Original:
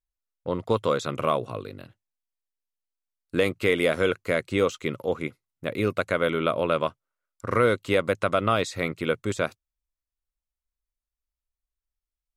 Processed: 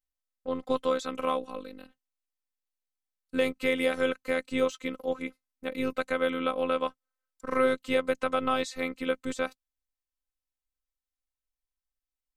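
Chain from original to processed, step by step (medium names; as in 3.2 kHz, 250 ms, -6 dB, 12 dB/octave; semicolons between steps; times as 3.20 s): robot voice 260 Hz; trim -2 dB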